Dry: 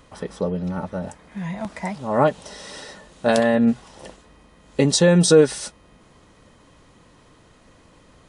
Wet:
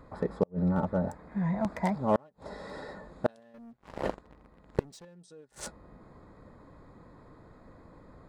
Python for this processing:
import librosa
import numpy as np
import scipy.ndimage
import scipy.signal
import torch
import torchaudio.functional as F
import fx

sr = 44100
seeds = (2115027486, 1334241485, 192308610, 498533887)

y = fx.wiener(x, sr, points=15)
y = fx.leveller(y, sr, passes=3, at=(3.54, 5.05))
y = fx.gate_flip(y, sr, shuts_db=-12.0, range_db=-39)